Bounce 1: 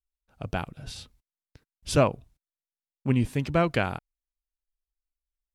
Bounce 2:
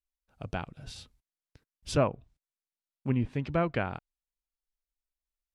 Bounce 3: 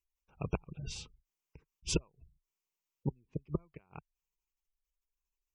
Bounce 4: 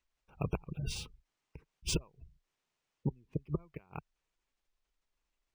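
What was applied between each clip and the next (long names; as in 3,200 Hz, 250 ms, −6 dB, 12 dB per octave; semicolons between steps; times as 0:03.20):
treble cut that deepens with the level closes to 2,300 Hz, closed at −21 dBFS; level −4.5 dB
gate with flip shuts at −21 dBFS, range −40 dB; EQ curve with evenly spaced ripples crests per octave 0.75, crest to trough 8 dB; gate on every frequency bin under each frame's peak −25 dB strong; level +2.5 dB
brickwall limiter −26.5 dBFS, peak gain reduction 9 dB; linearly interpolated sample-rate reduction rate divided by 3×; level +5 dB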